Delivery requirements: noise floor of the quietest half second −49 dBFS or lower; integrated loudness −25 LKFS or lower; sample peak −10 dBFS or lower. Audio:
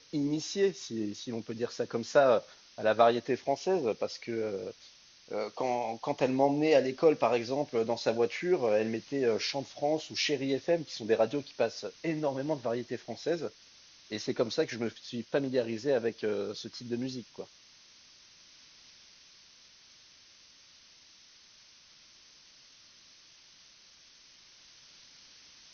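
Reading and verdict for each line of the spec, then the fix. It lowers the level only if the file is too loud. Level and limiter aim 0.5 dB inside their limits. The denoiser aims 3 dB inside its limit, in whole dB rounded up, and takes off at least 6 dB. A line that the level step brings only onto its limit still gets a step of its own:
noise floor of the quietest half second −58 dBFS: in spec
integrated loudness −31.0 LKFS: in spec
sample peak −9.5 dBFS: out of spec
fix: brickwall limiter −10.5 dBFS

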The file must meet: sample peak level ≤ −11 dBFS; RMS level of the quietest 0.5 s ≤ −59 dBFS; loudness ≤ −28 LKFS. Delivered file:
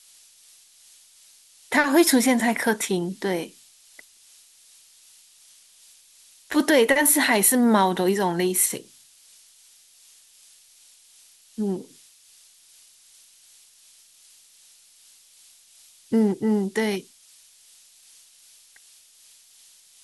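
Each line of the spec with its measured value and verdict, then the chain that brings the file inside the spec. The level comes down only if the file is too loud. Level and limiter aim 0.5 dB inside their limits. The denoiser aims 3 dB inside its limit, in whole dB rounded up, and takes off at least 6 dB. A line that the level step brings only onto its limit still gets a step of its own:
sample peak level −5.0 dBFS: out of spec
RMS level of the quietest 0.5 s −55 dBFS: out of spec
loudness −21.0 LKFS: out of spec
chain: level −7.5 dB

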